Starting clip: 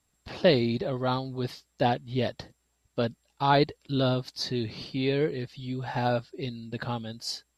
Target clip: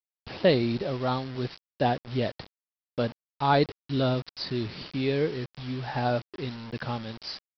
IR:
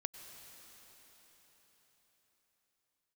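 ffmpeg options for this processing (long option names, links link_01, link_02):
-af "equalizer=frequency=3700:width=1.6:gain=-2.5,aresample=11025,acrusher=bits=6:mix=0:aa=0.000001,aresample=44100"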